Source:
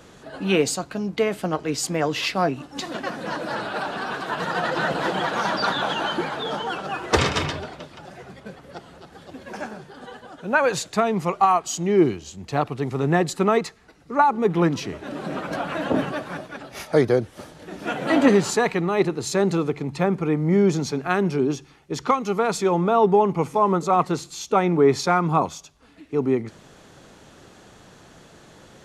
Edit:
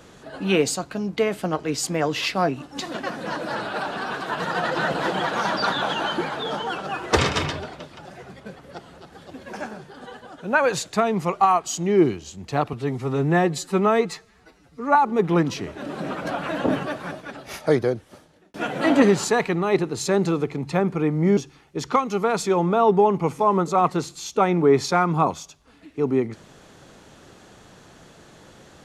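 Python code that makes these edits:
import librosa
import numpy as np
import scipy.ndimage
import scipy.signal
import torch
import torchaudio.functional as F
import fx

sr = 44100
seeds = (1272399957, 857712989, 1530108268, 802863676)

y = fx.edit(x, sr, fx.stretch_span(start_s=12.73, length_s=1.48, factor=1.5),
    fx.fade_out_span(start_s=16.86, length_s=0.94),
    fx.cut(start_s=20.63, length_s=0.89), tone=tone)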